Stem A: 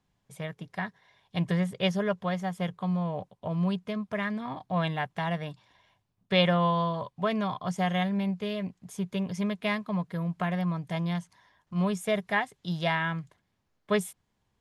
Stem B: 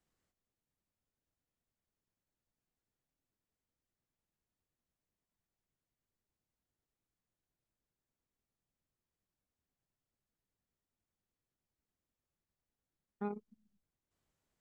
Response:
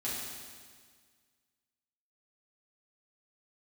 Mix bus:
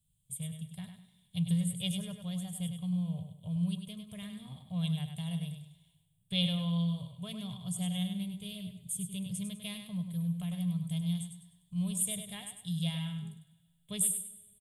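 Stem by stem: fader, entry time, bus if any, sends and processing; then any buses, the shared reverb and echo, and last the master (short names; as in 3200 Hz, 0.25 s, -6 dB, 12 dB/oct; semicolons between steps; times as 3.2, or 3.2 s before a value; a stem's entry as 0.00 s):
-0.5 dB, 0.00 s, send -20 dB, echo send -7 dB, high shelf 4000 Hz +10 dB
-4.0 dB, 0.00 s, no send, no echo send, dry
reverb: on, RT60 1.7 s, pre-delay 4 ms
echo: feedback echo 0.1 s, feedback 32%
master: EQ curve 160 Hz 0 dB, 300 Hz -27 dB, 480 Hz -20 dB, 1100 Hz -26 dB, 1700 Hz -29 dB, 3300 Hz -5 dB, 5700 Hz -22 dB, 8500 Hz +7 dB, 13000 Hz -1 dB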